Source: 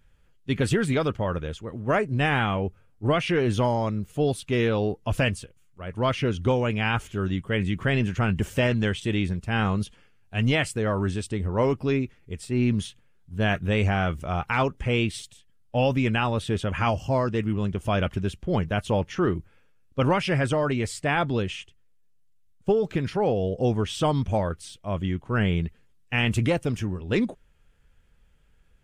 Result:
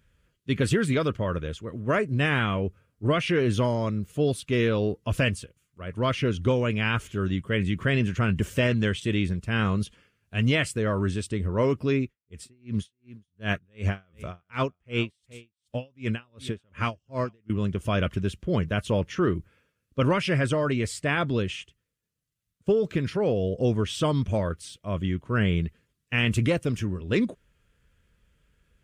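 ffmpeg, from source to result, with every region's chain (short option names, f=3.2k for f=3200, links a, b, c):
-filter_complex "[0:a]asettb=1/sr,asplit=3[a][b][c];[a]atrim=end=12.034[d];[b]atrim=start=12.03:end=17.5,asetpts=PTS-STARTPTS,afade=t=in:d=0.004:c=qsin,afade=t=out:st=5.466:d=0.004:c=qsin,aecho=1:1:423:0.106,atrim=end_sample=241227,aeval=exprs='val(0)*pow(10,-40*(0.5-0.5*cos(2*PI*2.7*n/s))/20)':c=same[e];[c]atrim=start=17.496[f];[d][e]acrossfade=d=0.004:c1=hsin:c2=qsin[g];[g][f]acrossfade=d=0.004:c1=qsin:c2=hsin,highpass=44,equalizer=f=800:w=5.1:g=-12.5"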